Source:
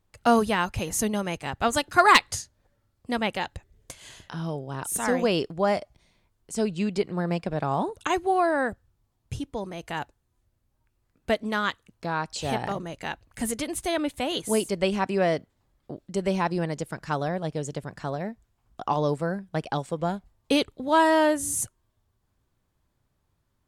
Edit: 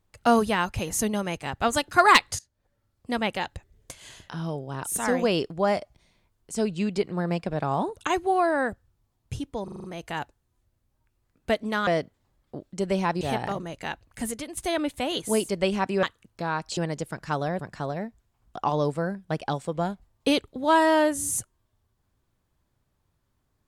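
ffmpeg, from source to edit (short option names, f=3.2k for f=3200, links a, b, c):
-filter_complex "[0:a]asplit=13[a][b][c][d][e][f][g][h][i][j][k][l][m];[a]atrim=end=2.39,asetpts=PTS-STARTPTS,afade=t=out:st=2.386:d=0.004:c=hsin:silence=0.0944061[n];[b]atrim=start=2.39:end=9.682,asetpts=PTS-STARTPTS,afade=t=in:d=0.87:c=qsin:silence=0.0944061[o];[c]atrim=start=9.638:end=9.682[p];[d]atrim=start=9.638:end=9.682[q];[e]atrim=start=9.638:end=9.682[r];[f]atrim=start=9.638:end=9.682[s];[g]atrim=start=9.638:end=11.672[t];[h]atrim=start=15.228:end=16.572[u];[i]atrim=start=12.408:end=13.77,asetpts=PTS-STARTPTS,afade=t=out:st=0.702:d=0.66:c=qsin:silence=0.334965[v];[j]atrim=start=13.77:end=15.232,asetpts=PTS-STARTPTS,afade=t=in:d=0.004:c=hsin:silence=0.334965[w];[k]atrim=start=11.668:end=12.412[x];[l]atrim=start=16.568:end=17.392[y];[m]atrim=start=17.828[z];[n][o]concat=n=2:v=0:a=1[aa];[aa][p]acrossfade=d=0.004:c1=hsin:c2=hsin[ab];[ab][q]acrossfade=d=0.004:c1=hsin:c2=hsin[ac];[ac][r]acrossfade=d=0.004:c1=hsin:c2=hsin[ad];[ad][s]acrossfade=d=0.004:c1=hsin:c2=hsin[ae];[ae][t]acrossfade=d=0.004:c1=hsin:c2=hsin[af];[af][u]acrossfade=d=0.004:c1=hsin:c2=hsin[ag];[v][w]concat=n=2:v=0:a=1[ah];[ag][ah]acrossfade=d=0.004:c1=hsin:c2=hsin[ai];[ai][x]acrossfade=d=0.004:c1=hsin:c2=hsin[aj];[aj][y]acrossfade=d=0.004:c1=hsin:c2=hsin[ak];[ak][z]acrossfade=d=0.004:c1=hsin:c2=hsin"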